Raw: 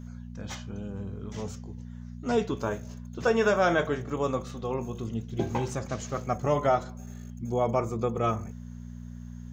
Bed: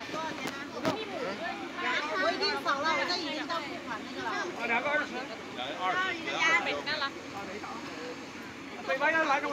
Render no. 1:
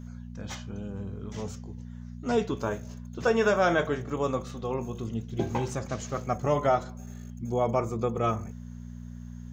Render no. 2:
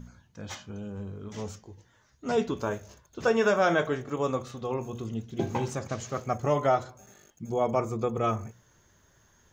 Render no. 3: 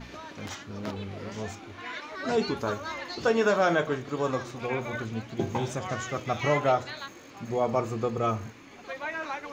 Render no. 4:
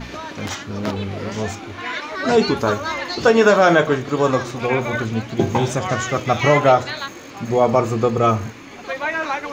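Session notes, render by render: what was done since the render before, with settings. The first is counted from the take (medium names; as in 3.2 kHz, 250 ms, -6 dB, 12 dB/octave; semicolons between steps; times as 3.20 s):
no audible change
de-hum 60 Hz, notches 4
add bed -7.5 dB
trim +11 dB; peak limiter -3 dBFS, peak gain reduction 2 dB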